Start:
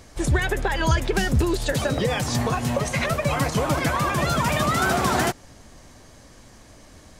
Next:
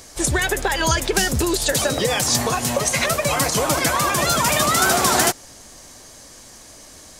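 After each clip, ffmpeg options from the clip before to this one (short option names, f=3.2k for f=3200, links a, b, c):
-af "bass=f=250:g=-7,treble=f=4k:g=10,volume=3.5dB"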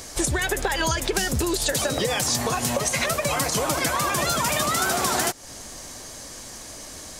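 -af "acompressor=threshold=-26dB:ratio=4,volume=4dB"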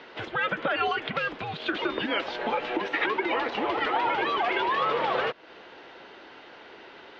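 -af "highpass=f=570:t=q:w=0.5412,highpass=f=570:t=q:w=1.307,lowpass=f=3.4k:t=q:w=0.5176,lowpass=f=3.4k:t=q:w=0.7071,lowpass=f=3.4k:t=q:w=1.932,afreqshift=-230"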